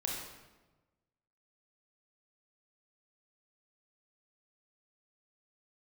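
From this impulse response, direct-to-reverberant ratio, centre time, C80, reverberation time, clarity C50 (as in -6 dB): -2.0 dB, 64 ms, 3.5 dB, 1.2 s, 1.0 dB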